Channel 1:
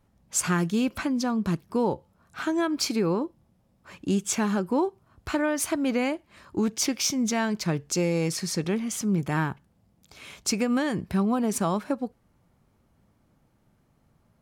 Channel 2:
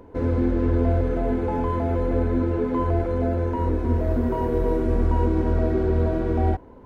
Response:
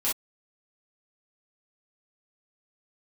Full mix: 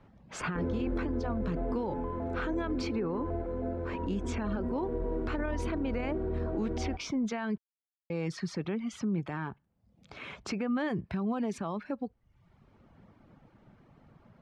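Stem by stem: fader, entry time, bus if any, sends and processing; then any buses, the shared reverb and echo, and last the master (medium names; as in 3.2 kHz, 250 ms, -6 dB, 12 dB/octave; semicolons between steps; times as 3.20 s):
-2.5 dB, 0.00 s, muted 7.58–8.10 s, no send, low-pass 2.9 kHz 12 dB/octave; reverb removal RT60 0.65 s; three bands compressed up and down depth 40%
+1.5 dB, 0.40 s, no send, low-pass 1.2 kHz 6 dB/octave; peaking EQ 94 Hz -14 dB 0.21 oct; auto duck -11 dB, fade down 1.85 s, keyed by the first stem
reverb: none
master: peak limiter -24.5 dBFS, peak gain reduction 10 dB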